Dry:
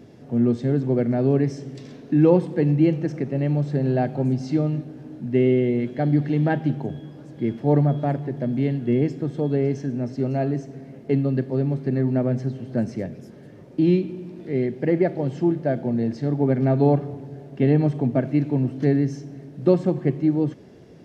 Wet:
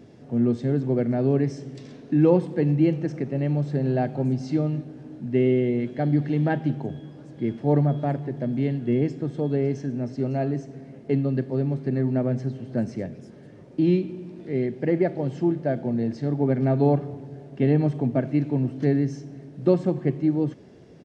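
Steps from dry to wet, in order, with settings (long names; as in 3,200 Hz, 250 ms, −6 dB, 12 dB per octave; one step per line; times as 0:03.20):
downsampling to 22,050 Hz
level −2 dB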